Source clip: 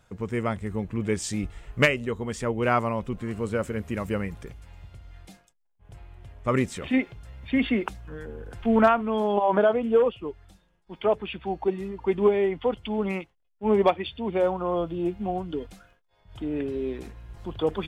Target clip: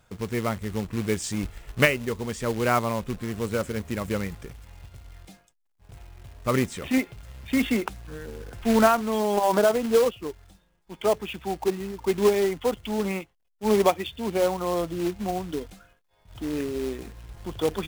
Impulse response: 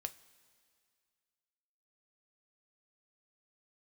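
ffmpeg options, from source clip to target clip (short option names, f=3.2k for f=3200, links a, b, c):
-af "acrusher=bits=3:mode=log:mix=0:aa=0.000001"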